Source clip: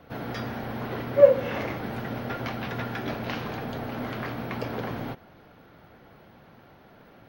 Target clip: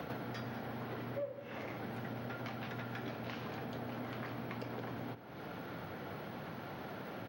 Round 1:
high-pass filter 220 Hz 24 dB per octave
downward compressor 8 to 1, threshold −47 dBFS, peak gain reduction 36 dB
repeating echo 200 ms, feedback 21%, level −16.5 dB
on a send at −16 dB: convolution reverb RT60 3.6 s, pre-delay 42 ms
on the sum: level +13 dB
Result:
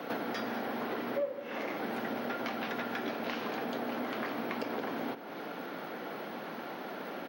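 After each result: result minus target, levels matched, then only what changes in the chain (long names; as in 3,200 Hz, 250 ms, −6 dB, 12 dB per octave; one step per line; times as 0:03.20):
125 Hz band −14.0 dB; downward compressor: peak gain reduction −7 dB
change: high-pass filter 92 Hz 24 dB per octave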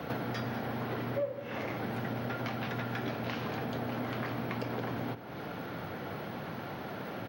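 downward compressor: peak gain reduction −7 dB
change: downward compressor 8 to 1, threshold −55 dBFS, peak gain reduction 43 dB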